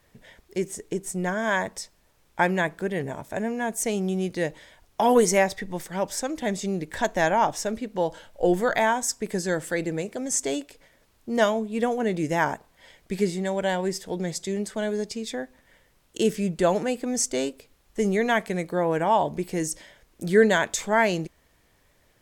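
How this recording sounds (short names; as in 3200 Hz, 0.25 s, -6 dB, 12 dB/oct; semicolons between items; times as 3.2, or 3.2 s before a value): noise floor -63 dBFS; spectral tilt -4.0 dB/oct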